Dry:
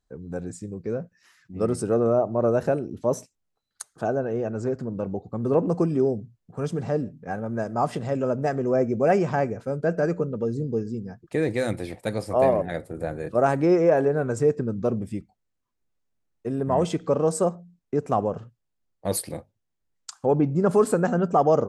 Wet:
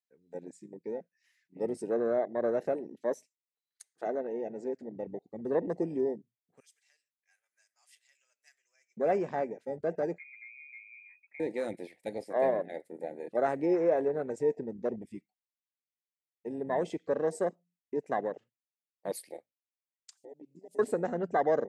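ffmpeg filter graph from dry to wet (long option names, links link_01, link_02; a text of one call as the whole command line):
ffmpeg -i in.wav -filter_complex "[0:a]asettb=1/sr,asplit=3[link_01][link_02][link_03];[link_01]atrim=end=6.604[link_04];[link_02]atrim=start=6.6:end=8.97,asetpts=PTS-STARTPTS,afade=type=in:duration=0.004:curve=qsin,afade=type=out:start_time=2.366:duration=0.004:curve=qsin,highpass=1300,aderivative[link_05];[link_03]atrim=start=8.966[link_06];[link_04][link_05]acrossfade=duration=0.004:curve1=hsin:curve2=qsin[link_07];[link_07][link_06]acrossfade=duration=0.004:curve1=qsin:curve2=hsin,asettb=1/sr,asplit=3[link_08][link_09][link_10];[link_08]atrim=end=10.184[link_11];[link_09]atrim=start=10.18:end=11.4,asetpts=PTS-STARTPTS,afade=type=in:duration=0.004:curve=qsin,afade=type=out:start_time=1.216:duration=0.004:curve=qsin,lowpass=frequency=2200:width_type=q:width=0.5098,lowpass=frequency=2200:width_type=q:width=0.6013,lowpass=frequency=2200:width_type=q:width=0.9,lowpass=frequency=2200:width_type=q:width=2.563,afreqshift=-2600,acompressor=threshold=-47dB:ratio=2:attack=3.2:release=140:knee=1:detection=peak[link_12];[link_10]atrim=start=11.396[link_13];[link_11][link_12]acrossfade=duration=0.004:curve1=hsin:curve2=qsin[link_14];[link_14][link_13]acrossfade=duration=0.004:curve1=qsin:curve2=hsin,asettb=1/sr,asplit=3[link_15][link_16][link_17];[link_15]atrim=end=20.174[link_18];[link_16]atrim=start=20.17:end=20.79,asetpts=PTS-STARTPTS,afade=type=in:duration=0.004:curve=qsin,afade=type=out:start_time=0.616:duration=0.004:curve=qsin,aemphasis=mode=production:type=50kf,acompressor=threshold=-34dB:ratio=8:attack=3.2:release=140:knee=1:detection=peak,asuperstop=centerf=1400:order=4:qfactor=0.5[link_19];[link_17]atrim=start=20.786[link_20];[link_18][link_19]acrossfade=duration=0.004:curve1=hsin:curve2=qsin[link_21];[link_21][link_20]acrossfade=duration=0.004:curve1=qsin:curve2=hsin,highpass=290,afwtdn=0.0398,highshelf=frequency=1600:width_type=q:width=3:gain=7,volume=-6dB" out.wav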